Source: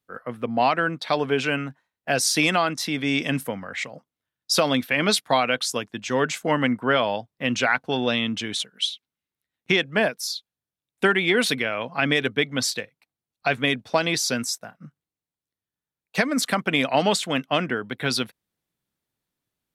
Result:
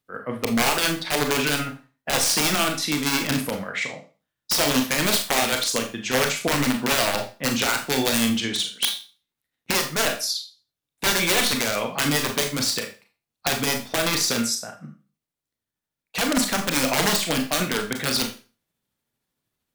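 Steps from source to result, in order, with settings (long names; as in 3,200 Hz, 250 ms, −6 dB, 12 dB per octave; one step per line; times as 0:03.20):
in parallel at −1 dB: brickwall limiter −17 dBFS, peak gain reduction 11.5 dB
on the sum: wrap-around overflow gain 11 dB
amplitude tremolo 13 Hz, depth 42%
four-comb reverb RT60 0.34 s, combs from 27 ms, DRR 3.5 dB
level −2 dB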